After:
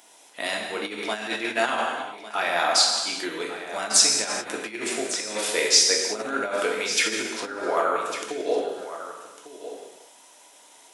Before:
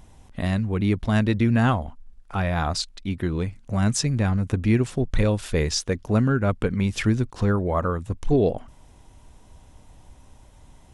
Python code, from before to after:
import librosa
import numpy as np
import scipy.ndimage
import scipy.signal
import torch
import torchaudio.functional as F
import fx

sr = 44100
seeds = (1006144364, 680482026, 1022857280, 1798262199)

p1 = fx.notch(x, sr, hz=1100.0, q=13.0)
p2 = fx.rev_gated(p1, sr, seeds[0], gate_ms=450, shape='falling', drr_db=-1.0)
p3 = fx.over_compress(p2, sr, threshold_db=-17.0, ratio=-0.5)
p4 = scipy.signal.sosfilt(scipy.signal.bessel(4, 550.0, 'highpass', norm='mag', fs=sr, output='sos'), p3)
p5 = fx.high_shelf(p4, sr, hz=2600.0, db=8.0)
y = p5 + fx.echo_single(p5, sr, ms=1151, db=-13.0, dry=0)